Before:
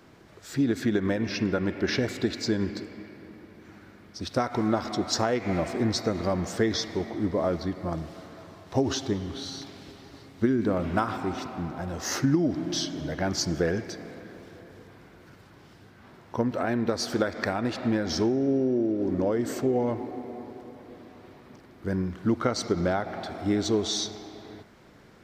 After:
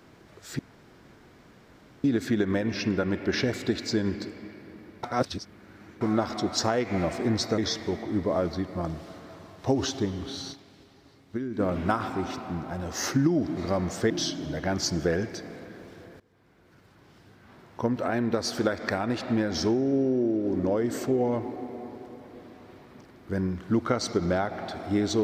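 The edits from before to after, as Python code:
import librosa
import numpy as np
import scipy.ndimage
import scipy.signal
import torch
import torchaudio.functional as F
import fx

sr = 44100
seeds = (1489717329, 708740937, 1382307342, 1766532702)

y = fx.edit(x, sr, fx.insert_room_tone(at_s=0.59, length_s=1.45),
    fx.reverse_span(start_s=3.58, length_s=0.98),
    fx.move(start_s=6.13, length_s=0.53, to_s=12.65),
    fx.fade_down_up(start_s=9.6, length_s=1.08, db=-8.5, fade_s=0.12, curve='exp'),
    fx.fade_in_from(start_s=14.75, length_s=1.97, curve='qsin', floor_db=-21.0), tone=tone)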